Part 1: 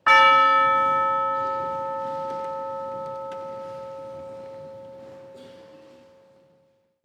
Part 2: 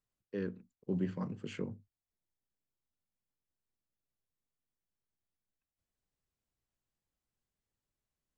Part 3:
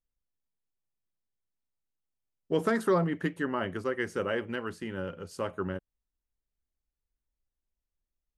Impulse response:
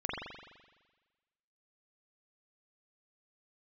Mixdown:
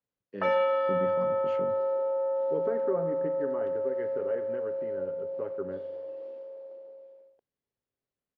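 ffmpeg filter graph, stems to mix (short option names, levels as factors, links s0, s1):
-filter_complex "[0:a]highpass=f=270:w=0.5412,highpass=f=270:w=1.3066,equalizer=f=590:w=2.6:g=14,adelay=350,volume=0.447[s0];[1:a]volume=0.75,asplit=2[s1][s2];[s2]volume=0.0841[s3];[2:a]lowpass=f=2300:w=0.5412,lowpass=f=2300:w=1.3066,tiltshelf=f=970:g=3,aecho=1:1:7.2:0.46,volume=0.501,asplit=2[s4][s5];[s5]volume=0.0794[s6];[s0][s4]amix=inputs=2:normalize=0,equalizer=f=470:w=1.3:g=12.5,acompressor=threshold=0.00501:ratio=1.5,volume=1[s7];[3:a]atrim=start_sample=2205[s8];[s3][s6]amix=inputs=2:normalize=0[s9];[s9][s8]afir=irnorm=-1:irlink=0[s10];[s1][s7][s10]amix=inputs=3:normalize=0,highpass=100,lowpass=4000"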